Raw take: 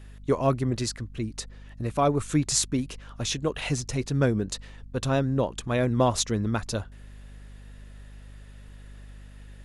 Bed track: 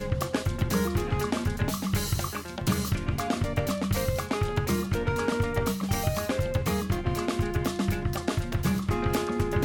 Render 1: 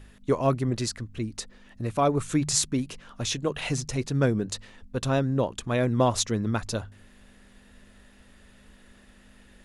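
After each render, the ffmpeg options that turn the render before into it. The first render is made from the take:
-af "bandreject=f=50:t=h:w=4,bandreject=f=100:t=h:w=4,bandreject=f=150:t=h:w=4"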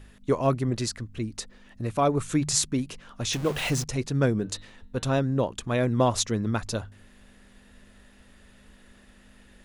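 -filter_complex "[0:a]asettb=1/sr,asplit=3[a][b][c];[a]atrim=end=3.334[d];[b]atrim=start=3.33:end=3.84,asetpts=PTS-STARTPTS,afade=t=in:d=0.004:c=qsin,afade=t=out:st=0.506:d=0.004:c=qsin,aeval=exprs='val(0)+0.5*0.0282*sgn(val(0))':c=same[e];[c]atrim=start=3.836[f];[d][e]acrossfade=d=0.004:c1=hsin:c2=qsin[g];[g][f]acrossfade=d=0.004:c1=qsin:c2=hsin,asettb=1/sr,asplit=3[h][i][j];[h]atrim=end=4.394[k];[i]atrim=start=4.39:end=5.18,asetpts=PTS-STARTPTS,afade=t=in:d=0.004:c=qsin,afade=t=out:st=0.786:d=0.004:c=qsin,bandreject=f=152.7:t=h:w=4,bandreject=f=305.4:t=h:w=4,bandreject=f=458.1:t=h:w=4,bandreject=f=610.8:t=h:w=4,bandreject=f=763.5:t=h:w=4,bandreject=f=916.2:t=h:w=4,bandreject=f=1.0689k:t=h:w=4,bandreject=f=1.2216k:t=h:w=4,bandreject=f=1.3743k:t=h:w=4,bandreject=f=1.527k:t=h:w=4,bandreject=f=1.6797k:t=h:w=4,bandreject=f=1.8324k:t=h:w=4,bandreject=f=1.9851k:t=h:w=4,bandreject=f=2.1378k:t=h:w=4,bandreject=f=2.2905k:t=h:w=4,bandreject=f=2.4432k:t=h:w=4,bandreject=f=2.5959k:t=h:w=4,bandreject=f=2.7486k:t=h:w=4,bandreject=f=2.9013k:t=h:w=4,bandreject=f=3.054k:t=h:w=4,bandreject=f=3.2067k:t=h:w=4,bandreject=f=3.3594k:t=h:w=4,bandreject=f=3.5121k:t=h:w=4,bandreject=f=3.6648k:t=h:w=4,bandreject=f=3.8175k:t=h:w=4,bandreject=f=3.9702k:t=h:w=4,bandreject=f=4.1229k:t=h:w=4[l];[j]atrim=start=5.176[m];[k][l]acrossfade=d=0.004:c1=hsin:c2=qsin[n];[n][m]acrossfade=d=0.004:c1=qsin:c2=hsin"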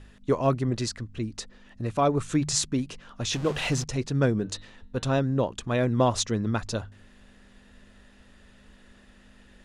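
-af "lowpass=7.9k,bandreject=f=2.2k:w=26"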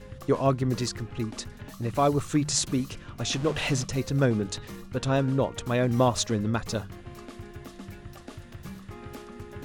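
-filter_complex "[1:a]volume=-15dB[a];[0:a][a]amix=inputs=2:normalize=0"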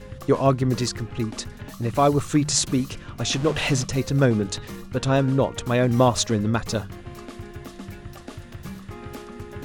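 -af "volume=4.5dB"

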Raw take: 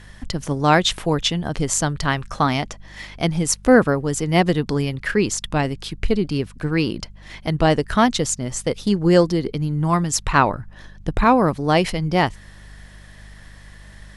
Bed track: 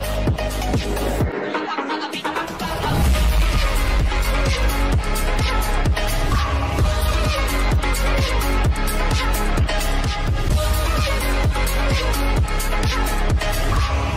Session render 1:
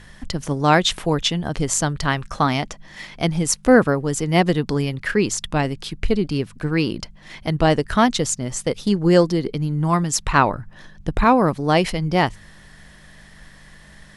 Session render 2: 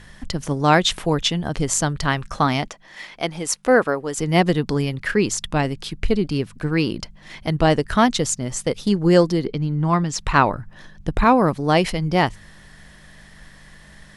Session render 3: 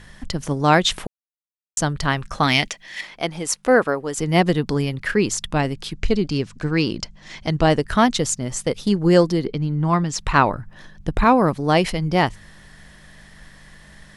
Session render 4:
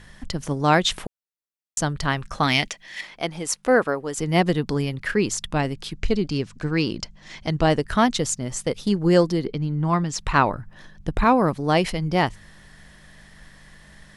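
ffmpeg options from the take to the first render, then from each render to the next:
-af "bandreject=f=50:t=h:w=4,bandreject=f=100:t=h:w=4"
-filter_complex "[0:a]asettb=1/sr,asplit=3[a][b][c];[a]atrim=end=2.684[d];[b]atrim=start=2.68:end=4.18,asetpts=PTS-STARTPTS,afade=t=in:d=0.004:c=qsin,afade=t=out:st=1.496:d=0.004:c=qsin,bass=f=250:g=-14,treble=f=4k:g=-3[e];[c]atrim=start=4.176[f];[d][e]acrossfade=d=0.004:c1=hsin:c2=qsin[g];[g][f]acrossfade=d=0.004:c1=qsin:c2=hsin,asettb=1/sr,asplit=3[h][i][j];[h]atrim=end=9.454[k];[i]atrim=start=9.45:end=10.19,asetpts=PTS-STARTPTS,afade=t=in:d=0.004:c=qsin,afade=t=out:st=0.736:d=0.004:c=qsin,lowpass=5.2k[l];[j]atrim=start=10.186[m];[k][l]acrossfade=d=0.004:c1=hsin:c2=qsin[n];[n][m]acrossfade=d=0.004:c1=qsin:c2=hsin"
-filter_complex "[0:a]asettb=1/sr,asplit=3[a][b][c];[a]atrim=end=2.434[d];[b]atrim=start=2.43:end=3.01,asetpts=PTS-STARTPTS,afade=t=in:d=0.004:c=qsin,afade=t=out:st=0.576:d=0.004:c=qsin,highshelf=f=1.6k:t=q:w=1.5:g=8[e];[c]atrim=start=3.006[f];[d][e]acrossfade=d=0.004:c1=hsin:c2=qsin[g];[g][f]acrossfade=d=0.004:c1=qsin:c2=hsin,asettb=1/sr,asplit=3[h][i][j];[h]atrim=end=5.954[k];[i]atrim=start=5.95:end=7.62,asetpts=PTS-STARTPTS,afade=t=in:d=0.004:c=qsin,afade=t=out:st=1.666:d=0.004:c=qsin,lowpass=f=6.7k:t=q:w=1.9[l];[j]atrim=start=7.616[m];[k][l]acrossfade=d=0.004:c1=hsin:c2=qsin[n];[n][m]acrossfade=d=0.004:c1=qsin:c2=hsin,asplit=3[o][p][q];[o]atrim=end=1.07,asetpts=PTS-STARTPTS,afade=t=out:st=1.066:d=0.004:c=hsin[r];[p]atrim=start=1.07:end=1.77,asetpts=PTS-STARTPTS,volume=0[s];[q]atrim=start=1.77,asetpts=PTS-STARTPTS,afade=t=in:d=0.004:c=hsin[t];[r][s][t]concat=n=3:v=0:a=1"
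-af "volume=-2.5dB"

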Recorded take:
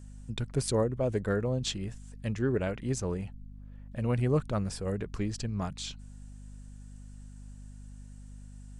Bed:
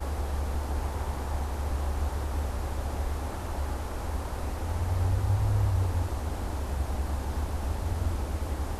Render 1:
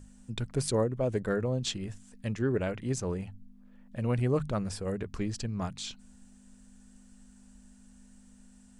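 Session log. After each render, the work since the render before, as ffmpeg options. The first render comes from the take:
-af "bandreject=f=50:t=h:w=6,bandreject=f=100:t=h:w=6,bandreject=f=150:t=h:w=6"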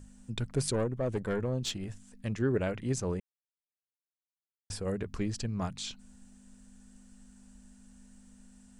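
-filter_complex "[0:a]asettb=1/sr,asplit=3[a][b][c];[a]atrim=end=0.734[d];[b]atrim=start=0.73:end=2.32,asetpts=PTS-STARTPTS,afade=t=in:d=0.004:c=qsin,afade=t=out:st=1.586:d=0.004:c=qsin,aeval=exprs='(tanh(15.8*val(0)+0.35)-tanh(0.35))/15.8':c=same[e];[c]atrim=start=2.316[f];[d][e]acrossfade=d=0.004:c1=hsin:c2=qsin[g];[g][f]acrossfade=d=0.004:c1=qsin:c2=hsin,asplit=3[h][i][j];[h]atrim=end=3.2,asetpts=PTS-STARTPTS,afade=t=out:st=3.196:d=0.004:c=hsin[k];[i]atrim=start=3.2:end=4.7,asetpts=PTS-STARTPTS,volume=0[l];[j]atrim=start=4.7,asetpts=PTS-STARTPTS,afade=t=in:d=0.004:c=hsin[m];[k][l][m]concat=n=3:v=0:a=1"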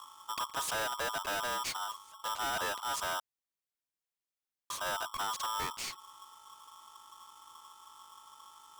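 -af "volume=32dB,asoftclip=hard,volume=-32dB,aeval=exprs='val(0)*sgn(sin(2*PI*1100*n/s))':c=same"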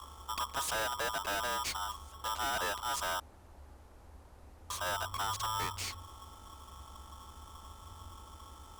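-filter_complex "[1:a]volume=-22.5dB[a];[0:a][a]amix=inputs=2:normalize=0"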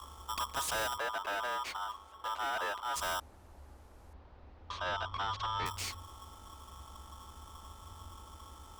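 -filter_complex "[0:a]asettb=1/sr,asplit=3[a][b][c];[a]atrim=end=0.984[d];[b]atrim=start=0.98:end=2.96,asetpts=PTS-STARTPTS,afade=t=in:d=0.004:c=qsin,afade=t=out:st=1.976:d=0.004:c=qsin,bass=f=250:g=-13,treble=f=4k:g=-12[e];[c]atrim=start=2.956[f];[d][e]acrossfade=d=0.004:c1=hsin:c2=qsin[g];[g][f]acrossfade=d=0.004:c1=qsin:c2=hsin,asettb=1/sr,asplit=3[h][i][j];[h]atrim=end=4.134[k];[i]atrim=start=4.13:end=5.66,asetpts=PTS-STARTPTS,afade=t=in:d=0.004:c=qsin,afade=t=out:st=1.526:d=0.004:c=qsin,lowpass=f=4.3k:w=0.5412,lowpass=f=4.3k:w=1.3066[l];[j]atrim=start=5.656[m];[k][l]acrossfade=d=0.004:c1=hsin:c2=qsin[n];[n][m]acrossfade=d=0.004:c1=qsin:c2=hsin"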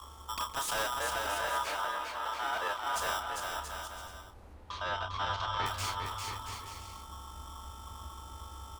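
-filter_complex "[0:a]asplit=2[a][b];[b]adelay=31,volume=-8dB[c];[a][c]amix=inputs=2:normalize=0,asplit=2[d][e];[e]aecho=0:1:400|680|876|1013|1109:0.631|0.398|0.251|0.158|0.1[f];[d][f]amix=inputs=2:normalize=0"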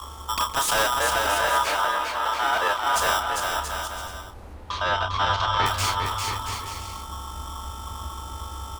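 -af "volume=11dB"

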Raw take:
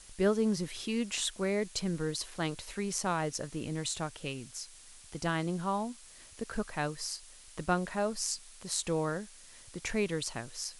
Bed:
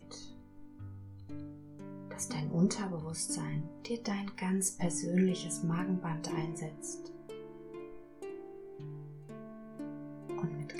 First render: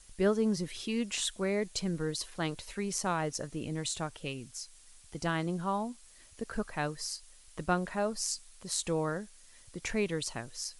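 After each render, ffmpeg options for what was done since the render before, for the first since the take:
-af "afftdn=nr=6:nf=-54"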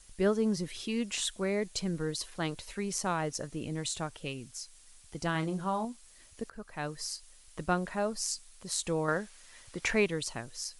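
-filter_complex "[0:a]asettb=1/sr,asplit=3[a][b][c];[a]atrim=end=5.324[d];[b]atrim=start=5.32:end=5.85,asetpts=PTS-STARTPTS,afade=t=in:d=0.004:c=qsin,afade=t=out:st=0.526:d=0.004:c=qsin,asplit=2[e][f];[f]adelay=32,volume=-8.5dB[g];[e][g]amix=inputs=2:normalize=0,atrim=end_sample=23373[h];[c]atrim=start=5.846[i];[d][h]acrossfade=d=0.004:c1=hsin:c2=qsin[j];[j][i]acrossfade=d=0.004:c1=qsin:c2=hsin,asettb=1/sr,asplit=3[k][l][m];[k]atrim=end=9.084[n];[l]atrim=start=9.08:end=10.06,asetpts=PTS-STARTPTS,afade=t=in:d=0.004:c=qsin,afade=t=out:st=0.976:d=0.004:c=qsin,equalizer=f=1.4k:w=0.32:g=8[o];[m]atrim=start=10.056[p];[n][o]acrossfade=d=0.004:c1=hsin:c2=qsin[q];[q][p]acrossfade=d=0.004:c1=qsin:c2=hsin,asplit=2[r][s];[r]atrim=end=6.5,asetpts=PTS-STARTPTS,afade=t=out:st=6.496:d=0.004:c=hsin:silence=0.141254[t];[s]atrim=start=6.5,asetpts=PTS-STARTPTS,afade=t=in:d=0.51:silence=0.141254[u];[t][u]concat=n=2:v=0:a=1"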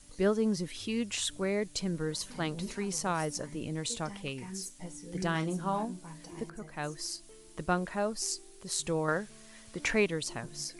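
-filter_complex "[1:a]volume=-10.5dB[a];[0:a][a]amix=inputs=2:normalize=0"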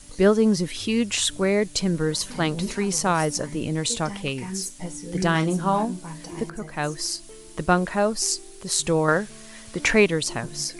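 -af "volume=10dB"

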